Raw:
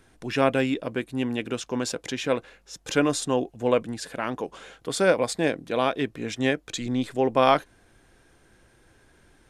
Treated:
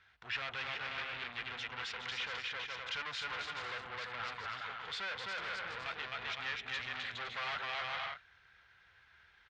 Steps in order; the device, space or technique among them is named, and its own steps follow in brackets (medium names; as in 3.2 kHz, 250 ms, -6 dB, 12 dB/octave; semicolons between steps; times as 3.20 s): 5.14–5.86 s: high-order bell 1.5 kHz -10.5 dB 2.8 oct; bouncing-ball echo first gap 260 ms, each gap 0.6×, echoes 5; scooped metal amplifier (valve stage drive 33 dB, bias 0.75; cabinet simulation 94–3900 Hz, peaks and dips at 140 Hz -6 dB, 240 Hz -3 dB, 580 Hz -5 dB, 1.4 kHz +6 dB, 2 kHz +4 dB; amplifier tone stack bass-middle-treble 10-0-10); trim +4.5 dB